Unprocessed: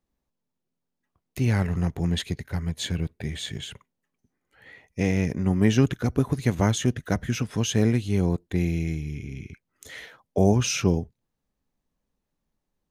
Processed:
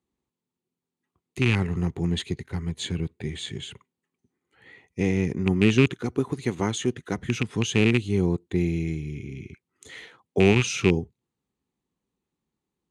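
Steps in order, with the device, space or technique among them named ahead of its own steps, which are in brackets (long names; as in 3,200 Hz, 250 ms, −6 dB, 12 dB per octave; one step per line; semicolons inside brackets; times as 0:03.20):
0:05.87–0:07.18: low-shelf EQ 150 Hz −11 dB
car door speaker with a rattle (loose part that buzzes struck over −21 dBFS, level −12 dBFS; loudspeaker in its box 84–9,400 Hz, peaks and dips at 370 Hz +6 dB, 610 Hz −10 dB, 1,600 Hz −5 dB, 5,400 Hz −8 dB)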